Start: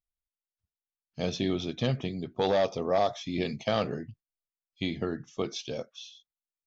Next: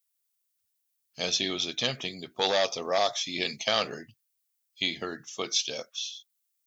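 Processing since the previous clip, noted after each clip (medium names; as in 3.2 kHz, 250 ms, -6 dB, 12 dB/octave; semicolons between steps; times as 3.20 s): tilt EQ +4.5 dB/octave; trim +2 dB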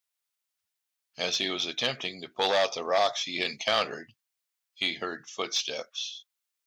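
overdrive pedal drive 9 dB, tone 2.5 kHz, clips at -10.5 dBFS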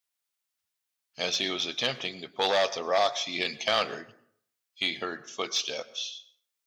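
plate-style reverb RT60 0.62 s, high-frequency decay 0.6×, pre-delay 95 ms, DRR 18 dB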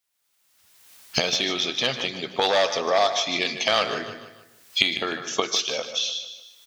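recorder AGC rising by 32 dB/s; feedback delay 151 ms, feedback 43%, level -11.5 dB; trim +4 dB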